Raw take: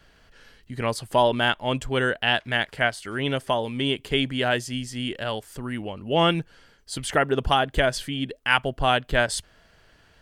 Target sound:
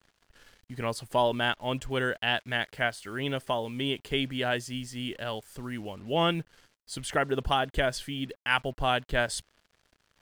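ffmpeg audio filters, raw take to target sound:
ffmpeg -i in.wav -af "acrusher=bits=7:mix=0:aa=0.5,volume=-5.5dB" out.wav

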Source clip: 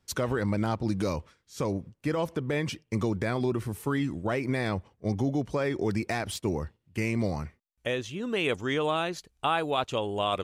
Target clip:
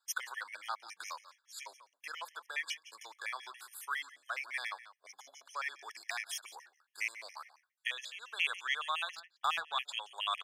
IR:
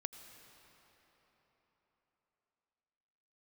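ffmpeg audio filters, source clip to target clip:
-filter_complex "[0:a]highpass=frequency=1100:width=0.5412,highpass=frequency=1100:width=1.3066,aecho=1:1:173:0.141,asettb=1/sr,asplit=3[link_01][link_02][link_03];[link_01]atrim=end=9.154[link_04];[link_02]atrim=start=9.15:end=9.73,asetpts=PTS-STARTPTS,afade=type=in:duration=0.004:curve=qsin,afade=type=out:start_time=0.576:duration=0.004:curve=qsin,adynamicsmooth=sensitivity=5.5:basefreq=2800[link_05];[link_03]atrim=start=9.726[link_06];[link_04][link_05]acrossfade=duration=0.004:curve1=hsin:curve2=qsin[link_07];[link_07][link_06]acrossfade=duration=0.004:curve1=qsin:curve2=hsin,afftfilt=real='re*gt(sin(2*PI*7.2*pts/sr)*(1-2*mod(floor(b*sr/1024/1700),2)),0)':imag='im*gt(sin(2*PI*7.2*pts/sr)*(1-2*mod(floor(b*sr/1024/1700),2)),0)':win_size=1024:overlap=0.75,volume=1dB"

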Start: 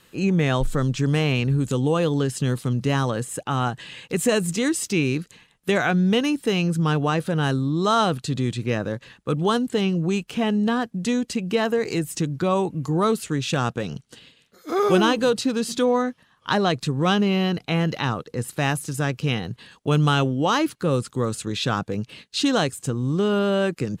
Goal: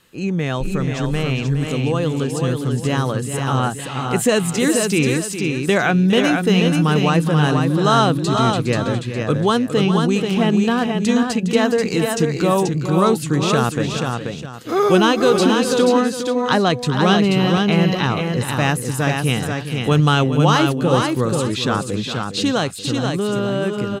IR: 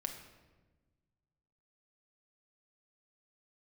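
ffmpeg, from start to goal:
-filter_complex "[0:a]asplit=2[link_01][link_02];[link_02]aecho=0:1:410:0.299[link_03];[link_01][link_03]amix=inputs=2:normalize=0,dynaudnorm=framelen=550:gausssize=11:maxgain=7dB,asplit=2[link_04][link_05];[link_05]aecho=0:1:484:0.596[link_06];[link_04][link_06]amix=inputs=2:normalize=0,volume=-1dB"

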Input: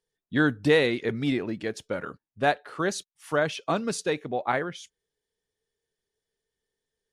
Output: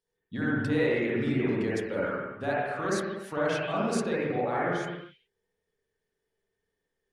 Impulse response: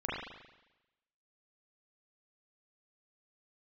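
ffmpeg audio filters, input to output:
-filter_complex "[0:a]alimiter=limit=-22.5dB:level=0:latency=1:release=27[link_01];[1:a]atrim=start_sample=2205,afade=type=out:start_time=0.37:duration=0.01,atrim=end_sample=16758,asetrate=33957,aresample=44100[link_02];[link_01][link_02]afir=irnorm=-1:irlink=0,volume=-3.5dB"

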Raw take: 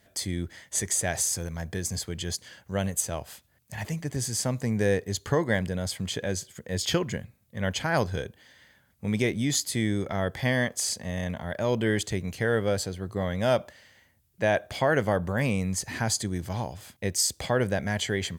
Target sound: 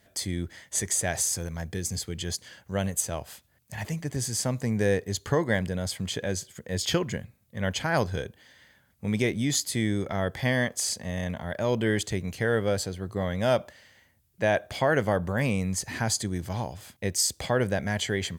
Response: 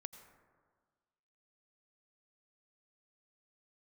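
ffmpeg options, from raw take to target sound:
-filter_complex "[0:a]asettb=1/sr,asplit=3[link_01][link_02][link_03];[link_01]atrim=end=1.644[link_04];[link_02]atrim=start=1.64:end=2.2,asetpts=PTS-STARTPTS,afade=type=in:duration=0.004:curve=qsin,afade=type=out:start_time=0.556:duration=0.004:curve=qsin,equalizer=frequency=630:width_type=o:width=0.33:gain=-7,equalizer=frequency=1000:width_type=o:width=0.33:gain=-7,equalizer=frequency=1600:width_type=o:width=0.33:gain=-4[link_05];[link_03]atrim=start=2.196[link_06];[link_04][link_05]acrossfade=duration=0.004:curve1=hsin:curve2=qsin[link_07];[link_07][link_06]acrossfade=duration=0.004:curve1=qsin:curve2=hsin"

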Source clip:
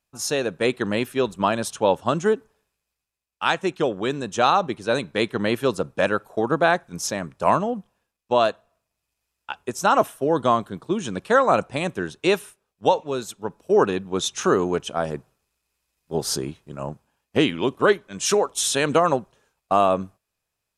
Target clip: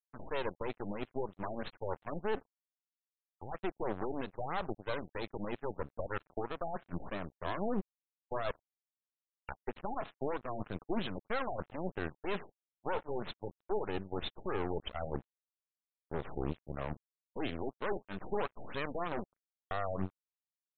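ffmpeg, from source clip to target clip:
ffmpeg -i in.wav -af "adynamicequalizer=threshold=0.0126:dfrequency=730:dqfactor=7.7:tfrequency=730:tqfactor=7.7:attack=5:release=100:ratio=0.375:range=1.5:mode=boostabove:tftype=bell,areverse,acompressor=threshold=-31dB:ratio=6,areverse,alimiter=level_in=4dB:limit=-24dB:level=0:latency=1:release=73,volume=-4dB,aeval=exprs='0.0422*(cos(1*acos(clip(val(0)/0.0422,-1,1)))-cos(1*PI/2))+0.015*(cos(4*acos(clip(val(0)/0.0422,-1,1)))-cos(4*PI/2))':channel_layout=same,aresample=11025,aeval=exprs='sgn(val(0))*max(abs(val(0))-0.00251,0)':channel_layout=same,aresample=44100,afftfilt=real='re*lt(b*sr/1024,850*pow(4300/850,0.5+0.5*sin(2*PI*3.1*pts/sr)))':imag='im*lt(b*sr/1024,850*pow(4300/850,0.5+0.5*sin(2*PI*3.1*pts/sr)))':win_size=1024:overlap=0.75,volume=1dB" out.wav

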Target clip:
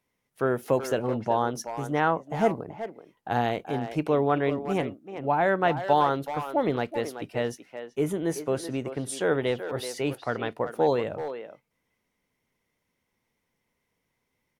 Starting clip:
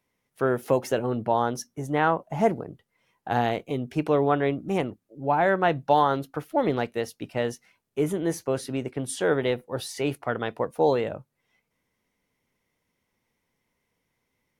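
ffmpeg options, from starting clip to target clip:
ffmpeg -i in.wav -filter_complex "[0:a]asplit=2[link_01][link_02];[link_02]adelay=380,highpass=300,lowpass=3400,asoftclip=type=hard:threshold=-16.5dB,volume=-9dB[link_03];[link_01][link_03]amix=inputs=2:normalize=0,volume=-1.5dB" out.wav

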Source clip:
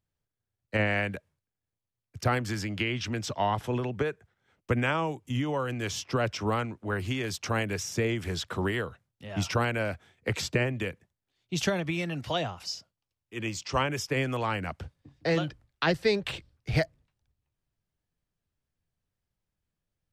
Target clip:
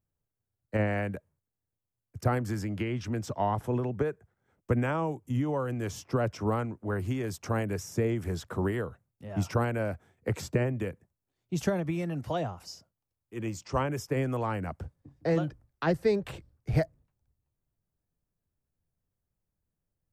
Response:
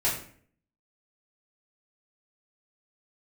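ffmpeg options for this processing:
-af "equalizer=frequency=3400:width=0.62:gain=-14.5,volume=1dB"

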